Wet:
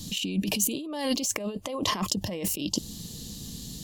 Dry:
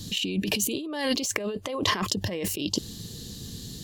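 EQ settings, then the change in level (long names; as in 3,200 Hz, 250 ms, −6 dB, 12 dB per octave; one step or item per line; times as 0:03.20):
graphic EQ with 15 bands 100 Hz −9 dB, 400 Hz −8 dB, 1,600 Hz −8 dB, 4,000 Hz −4 dB
dynamic equaliser 2,000 Hz, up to −4 dB, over −46 dBFS, Q 0.79
+2.5 dB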